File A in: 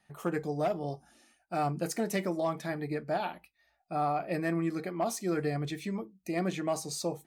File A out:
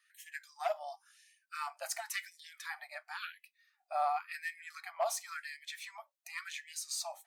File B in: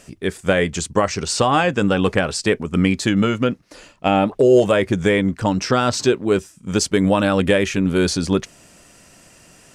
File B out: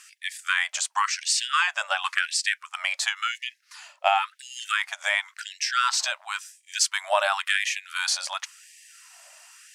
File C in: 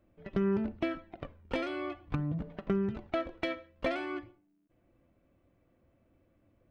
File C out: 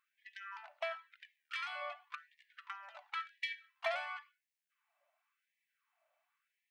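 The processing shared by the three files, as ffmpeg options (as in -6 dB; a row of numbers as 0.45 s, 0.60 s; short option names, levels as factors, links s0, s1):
-af "lowshelf=f=270:g=-11,afftfilt=real='re*gte(b*sr/1024,550*pow(1700/550,0.5+0.5*sin(2*PI*0.94*pts/sr)))':imag='im*gte(b*sr/1024,550*pow(1700/550,0.5+0.5*sin(2*PI*0.94*pts/sr)))':win_size=1024:overlap=0.75"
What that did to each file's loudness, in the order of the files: -7.0 LU, -7.0 LU, -8.0 LU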